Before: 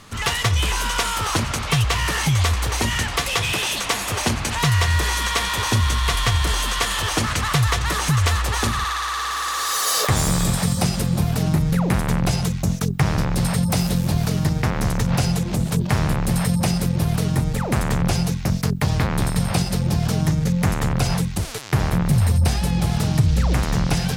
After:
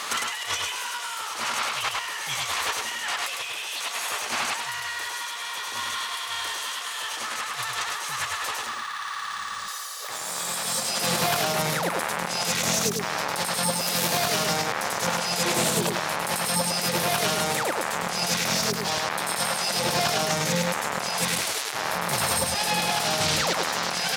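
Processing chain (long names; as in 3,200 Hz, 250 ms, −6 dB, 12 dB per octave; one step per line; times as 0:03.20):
high-pass filter 670 Hz 12 dB per octave
compressor whose output falls as the input rises −37 dBFS, ratio −1
brickwall limiter −21.5 dBFS, peak gain reduction 11 dB
single-tap delay 104 ms −3 dB
0:08.66–0:09.68: linearly interpolated sample-rate reduction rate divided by 3×
level +7.5 dB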